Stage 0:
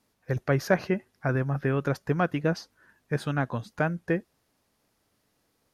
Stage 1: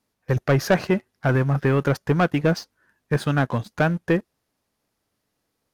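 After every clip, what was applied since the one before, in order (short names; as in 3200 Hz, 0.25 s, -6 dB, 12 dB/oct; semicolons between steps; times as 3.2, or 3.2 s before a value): sample leveller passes 2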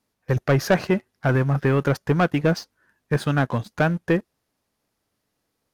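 nothing audible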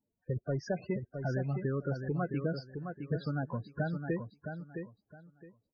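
compressor 2.5:1, threshold -27 dBFS, peak gain reduction 9 dB; loudest bins only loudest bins 16; on a send: feedback echo 0.664 s, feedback 22%, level -7 dB; on the sum: gain -6.5 dB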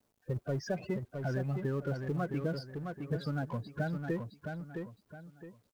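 G.711 law mismatch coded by mu; gain -2 dB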